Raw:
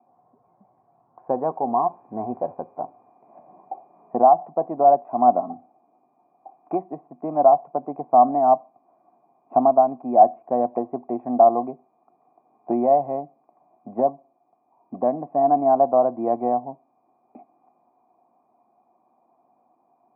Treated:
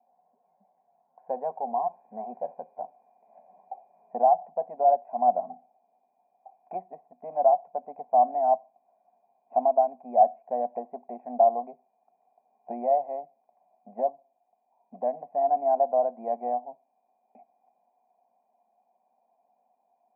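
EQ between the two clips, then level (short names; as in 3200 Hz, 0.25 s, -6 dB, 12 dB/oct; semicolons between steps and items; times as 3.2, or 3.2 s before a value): brick-wall FIR high-pass 170 Hz; fixed phaser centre 1200 Hz, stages 6; -5.5 dB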